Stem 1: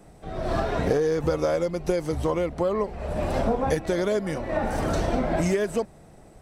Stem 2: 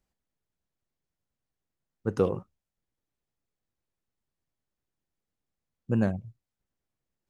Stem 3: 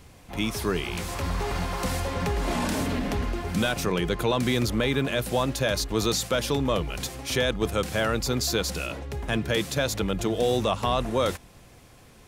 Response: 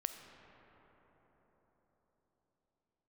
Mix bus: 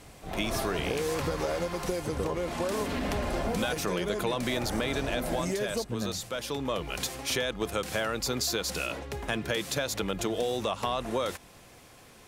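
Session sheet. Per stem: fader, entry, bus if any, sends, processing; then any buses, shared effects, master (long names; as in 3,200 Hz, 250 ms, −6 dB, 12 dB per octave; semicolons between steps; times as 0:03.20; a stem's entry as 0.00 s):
−5.0 dB, 0.00 s, no send, high-shelf EQ 5,100 Hz +8 dB
−7.5 dB, 0.00 s, no send, no processing
+1.5 dB, 0.00 s, no send, low-shelf EQ 200 Hz −9.5 dB; automatic ducking −10 dB, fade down 0.90 s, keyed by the second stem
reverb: not used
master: downward compressor, threshold −26 dBFS, peak gain reduction 7 dB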